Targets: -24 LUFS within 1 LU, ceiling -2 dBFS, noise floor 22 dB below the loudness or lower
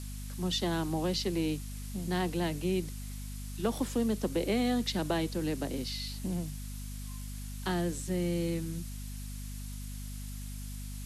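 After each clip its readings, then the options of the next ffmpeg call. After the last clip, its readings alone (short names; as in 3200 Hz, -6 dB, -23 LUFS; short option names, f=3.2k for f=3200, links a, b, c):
hum 50 Hz; harmonics up to 250 Hz; hum level -38 dBFS; noise floor -40 dBFS; noise floor target -57 dBFS; loudness -34.5 LUFS; peak -17.5 dBFS; loudness target -24.0 LUFS
-> -af "bandreject=f=50:t=h:w=6,bandreject=f=100:t=h:w=6,bandreject=f=150:t=h:w=6,bandreject=f=200:t=h:w=6,bandreject=f=250:t=h:w=6"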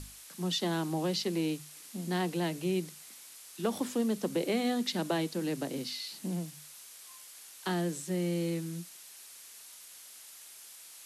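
hum none; noise floor -51 dBFS; noise floor target -56 dBFS
-> -af "afftdn=nr=6:nf=-51"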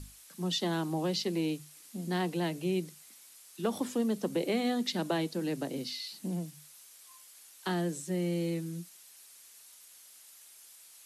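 noise floor -55 dBFS; noise floor target -56 dBFS
-> -af "afftdn=nr=6:nf=-55"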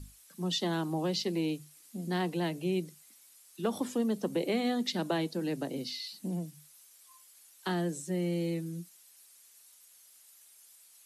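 noise floor -59 dBFS; loudness -33.5 LUFS; peak -17.5 dBFS; loudness target -24.0 LUFS
-> -af "volume=9.5dB"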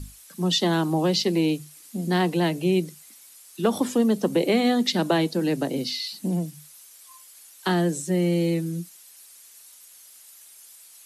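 loudness -24.0 LUFS; peak -8.0 dBFS; noise floor -50 dBFS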